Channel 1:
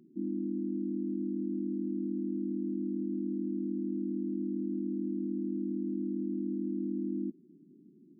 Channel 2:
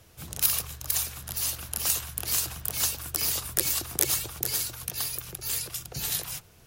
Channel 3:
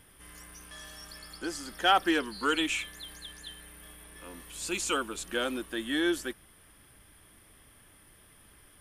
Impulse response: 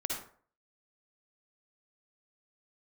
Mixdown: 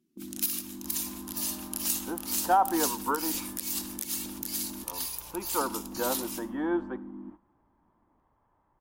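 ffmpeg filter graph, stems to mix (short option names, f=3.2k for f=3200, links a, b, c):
-filter_complex "[0:a]alimiter=level_in=5.5dB:limit=-24dB:level=0:latency=1:release=28,volume=-5.5dB,volume=-6dB,asplit=3[a][b][c];[a]atrim=end=4.84,asetpts=PTS-STARTPTS,afade=t=out:st=4.836:d=0.004:c=hsin[d];[b]atrim=start=4.84:end=5.61,asetpts=PTS-STARTPTS,volume=0[e];[c]atrim=start=5.61,asetpts=PTS-STARTPTS,afade=t=in:d=0.004:c=hsin[f];[d][e][f]concat=n=3:v=0:a=1,asplit=2[g][h];[h]volume=-14.5dB[i];[1:a]agate=range=-12dB:threshold=-42dB:ratio=16:detection=peak,tiltshelf=f=1.4k:g=-6.5,volume=-11.5dB,asplit=2[j][k];[k]volume=-11dB[l];[2:a]lowpass=f=930:t=q:w=5.9,adelay=650,volume=-2.5dB,asplit=2[m][n];[n]volume=-20.5dB[o];[3:a]atrim=start_sample=2205[p];[i][l][o]amix=inputs=3:normalize=0[q];[q][p]afir=irnorm=-1:irlink=0[r];[g][j][m][r]amix=inputs=4:normalize=0,agate=range=-11dB:threshold=-47dB:ratio=16:detection=peak,alimiter=limit=-13.5dB:level=0:latency=1:release=208"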